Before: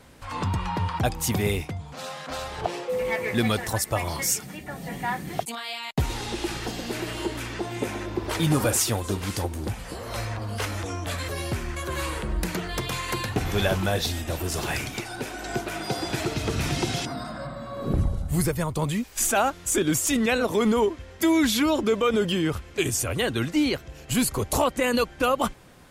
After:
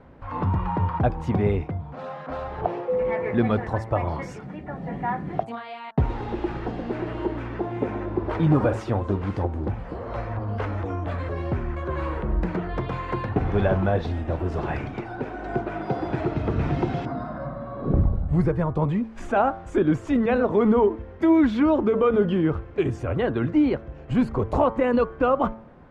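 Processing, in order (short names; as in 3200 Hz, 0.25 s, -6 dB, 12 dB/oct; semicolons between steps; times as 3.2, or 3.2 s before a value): LPF 1200 Hz 12 dB/oct; de-hum 111.7 Hz, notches 16; gain +3.5 dB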